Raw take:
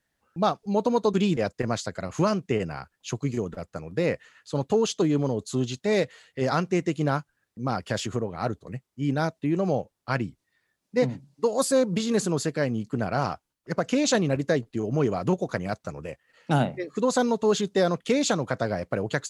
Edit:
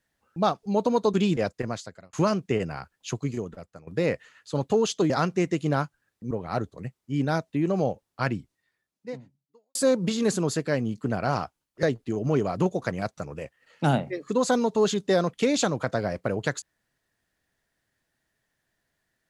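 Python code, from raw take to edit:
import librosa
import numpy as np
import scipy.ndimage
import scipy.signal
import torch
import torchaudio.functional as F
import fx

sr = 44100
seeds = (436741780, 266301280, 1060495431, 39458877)

y = fx.edit(x, sr, fx.fade_out_span(start_s=1.44, length_s=0.69),
    fx.fade_out_to(start_s=3.12, length_s=0.75, floor_db=-14.5),
    fx.cut(start_s=5.1, length_s=1.35),
    fx.cut(start_s=7.66, length_s=0.54),
    fx.fade_out_span(start_s=10.26, length_s=1.38, curve='qua'),
    fx.cut(start_s=13.72, length_s=0.78), tone=tone)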